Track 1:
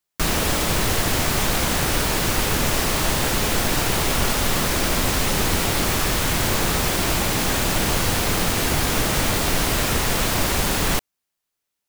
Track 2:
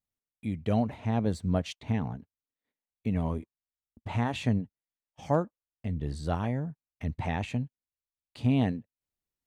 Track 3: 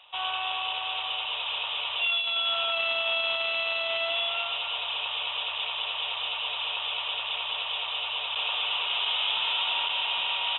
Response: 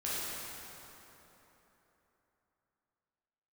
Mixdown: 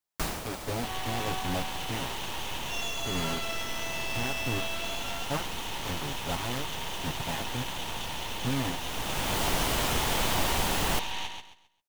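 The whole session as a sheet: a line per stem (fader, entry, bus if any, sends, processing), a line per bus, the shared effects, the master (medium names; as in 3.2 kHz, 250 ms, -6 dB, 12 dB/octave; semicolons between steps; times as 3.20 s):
-8.5 dB, 0.00 s, no send, echo send -19.5 dB, peaking EQ 810 Hz +5 dB 0.84 oct; auto duck -12 dB, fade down 0.25 s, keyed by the second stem
-5.5 dB, 0.00 s, no send, no echo send, comb filter that takes the minimum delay 7.3 ms; bit crusher 5-bit
-5.5 dB, 0.70 s, no send, echo send -5.5 dB, peaking EQ 870 Hz +10.5 dB 0.51 oct; half-wave rectifier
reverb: none
echo: feedback delay 133 ms, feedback 28%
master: none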